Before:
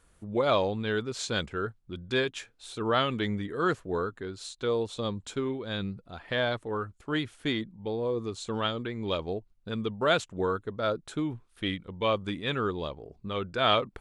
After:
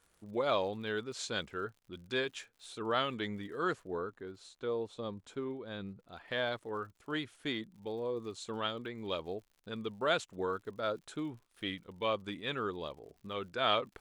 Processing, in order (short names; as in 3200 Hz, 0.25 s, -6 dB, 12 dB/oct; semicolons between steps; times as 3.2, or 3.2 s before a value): low shelf 150 Hz -10 dB; crackle 83/s -47 dBFS; 3.89–6.06 high shelf 2000 Hz -9.5 dB; gain -5.5 dB